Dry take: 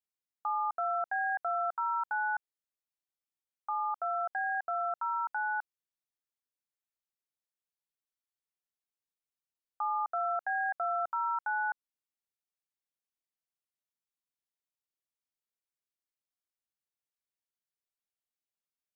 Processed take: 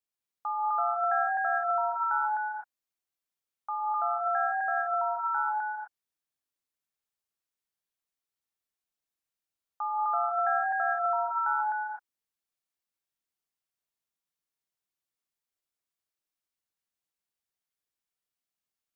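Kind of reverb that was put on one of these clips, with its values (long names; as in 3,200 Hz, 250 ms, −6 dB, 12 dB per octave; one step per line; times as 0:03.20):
reverb whose tail is shaped and stops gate 280 ms rising, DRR 0.5 dB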